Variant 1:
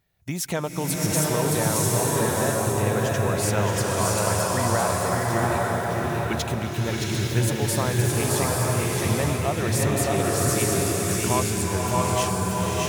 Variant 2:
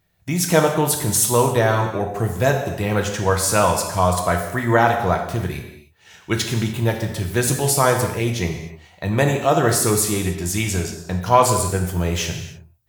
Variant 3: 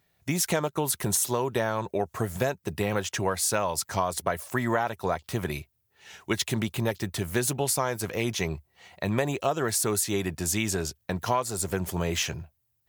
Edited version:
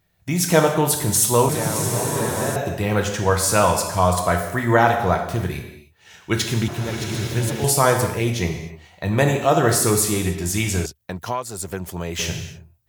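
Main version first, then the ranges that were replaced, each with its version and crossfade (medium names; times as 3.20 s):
2
1.49–2.56 s: from 1
6.68–7.64 s: from 1
10.86–12.19 s: from 3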